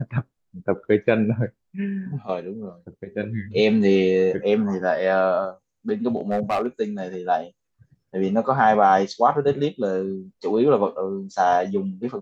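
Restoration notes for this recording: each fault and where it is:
0:06.16–0:06.67: clipping −17.5 dBFS

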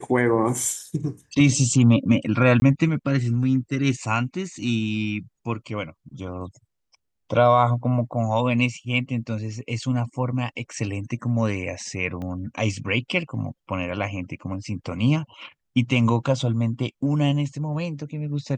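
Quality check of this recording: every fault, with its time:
0:02.60–0:02.62: drop-out 20 ms
0:10.73: drop-out 2.1 ms
0:12.22: click −23 dBFS

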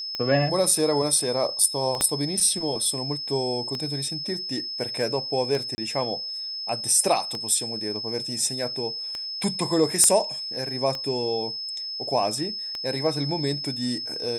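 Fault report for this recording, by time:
scratch tick 33 1/3 rpm −16 dBFS
whistle 5,200 Hz −30 dBFS
0:02.01: click −8 dBFS
0:05.75–0:05.78: drop-out 30 ms
0:10.04: click −6 dBFS

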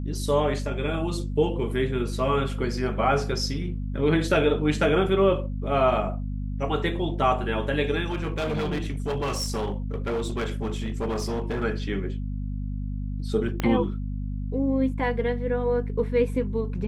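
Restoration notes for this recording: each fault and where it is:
mains hum 50 Hz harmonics 5 −30 dBFS
0:08.06–0:11.64: clipping −23.5 dBFS
0:13.60: click −12 dBFS

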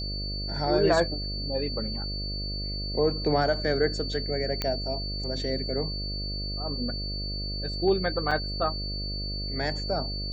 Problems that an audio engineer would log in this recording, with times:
mains buzz 50 Hz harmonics 13 −34 dBFS
whistle 4,500 Hz −34 dBFS
0:04.62: click −12 dBFS
0:08.31: drop-out 4.7 ms

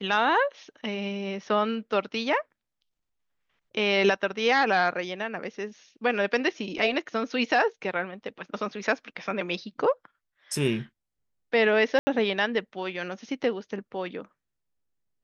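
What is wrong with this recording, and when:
0:11.99–0:12.07: drop-out 80 ms

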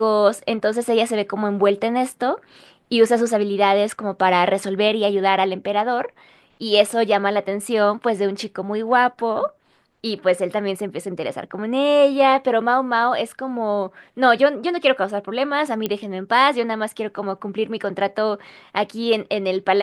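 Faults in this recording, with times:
0:15.86: click −9 dBFS

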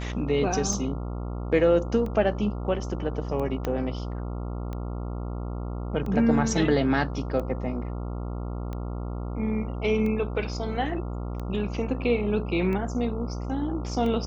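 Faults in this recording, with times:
mains buzz 60 Hz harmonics 23 −32 dBFS
scratch tick 45 rpm −23 dBFS
0:03.65: click −15 dBFS

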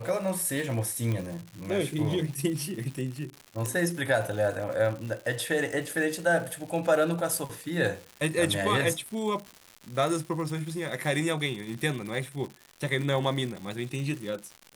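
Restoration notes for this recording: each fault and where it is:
surface crackle 200 per second −35 dBFS
0:01.12: click −19 dBFS
0:03.66: click

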